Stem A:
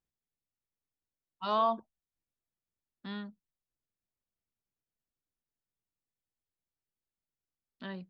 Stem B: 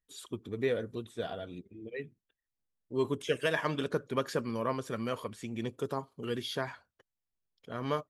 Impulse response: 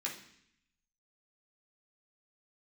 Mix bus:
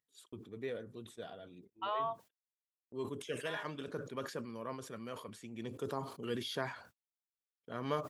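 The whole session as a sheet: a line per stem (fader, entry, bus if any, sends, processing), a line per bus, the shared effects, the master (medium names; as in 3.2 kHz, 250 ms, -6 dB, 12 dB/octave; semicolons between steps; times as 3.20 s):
+2.5 dB, 0.40 s, no send, elliptic band-pass 510–3200 Hz; expander -54 dBFS; compression 3:1, threshold -39 dBFS, peak gain reduction 11 dB
5.29 s -10.5 dB -> 6.04 s -3.5 dB, 0.00 s, no send, high-pass 110 Hz; decay stretcher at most 99 dB/s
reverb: none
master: gate -57 dBFS, range -51 dB; upward compressor, threshold -56 dBFS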